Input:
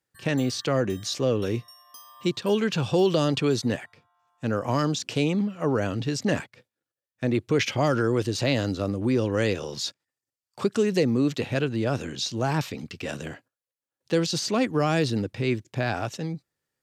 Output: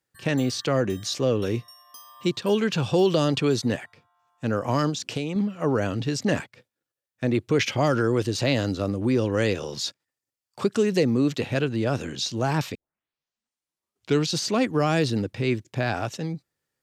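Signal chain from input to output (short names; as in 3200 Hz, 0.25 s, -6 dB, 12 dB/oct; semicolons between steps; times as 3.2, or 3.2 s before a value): 4.89–5.36 compressor 6:1, threshold -26 dBFS, peak gain reduction 7.5 dB; 12.75 tape start 1.60 s; gain +1 dB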